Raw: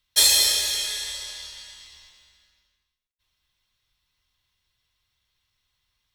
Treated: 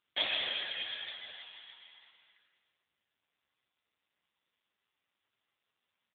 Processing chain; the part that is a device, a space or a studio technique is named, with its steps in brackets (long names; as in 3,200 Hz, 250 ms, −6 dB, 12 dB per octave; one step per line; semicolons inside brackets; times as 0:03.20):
satellite phone (band-pass filter 360–3,200 Hz; single-tap delay 610 ms −21 dB; AMR narrowband 5.9 kbit/s 8,000 Hz)